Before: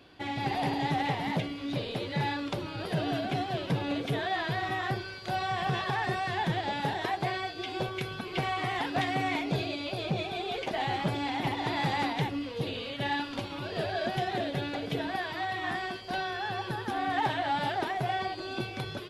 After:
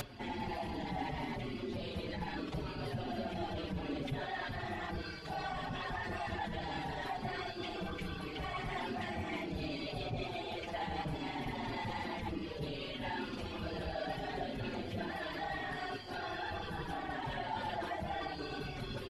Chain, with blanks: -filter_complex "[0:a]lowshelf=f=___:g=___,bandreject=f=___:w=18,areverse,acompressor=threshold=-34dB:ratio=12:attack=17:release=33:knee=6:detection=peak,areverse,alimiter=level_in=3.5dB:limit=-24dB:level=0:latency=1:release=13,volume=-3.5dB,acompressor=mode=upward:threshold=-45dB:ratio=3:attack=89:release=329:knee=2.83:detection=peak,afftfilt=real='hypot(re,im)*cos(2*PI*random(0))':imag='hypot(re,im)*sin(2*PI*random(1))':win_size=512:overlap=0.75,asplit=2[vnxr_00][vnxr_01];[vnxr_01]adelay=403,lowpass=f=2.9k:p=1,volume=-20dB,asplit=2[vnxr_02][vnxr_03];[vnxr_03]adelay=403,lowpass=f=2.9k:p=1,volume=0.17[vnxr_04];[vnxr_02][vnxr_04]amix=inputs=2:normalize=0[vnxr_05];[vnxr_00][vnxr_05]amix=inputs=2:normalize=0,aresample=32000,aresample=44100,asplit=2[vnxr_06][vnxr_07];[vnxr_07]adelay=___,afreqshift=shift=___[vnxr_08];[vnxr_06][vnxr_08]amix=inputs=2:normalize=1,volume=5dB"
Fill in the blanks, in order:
140, 9.5, 3.7k, 5, -0.69